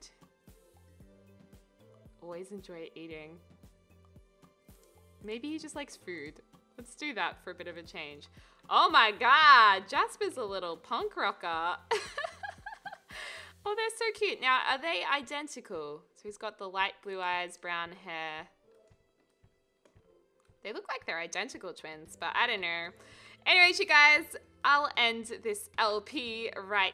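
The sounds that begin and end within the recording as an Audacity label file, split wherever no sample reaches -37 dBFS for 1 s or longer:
2.280000	3.230000	sound
5.270000	18.420000	sound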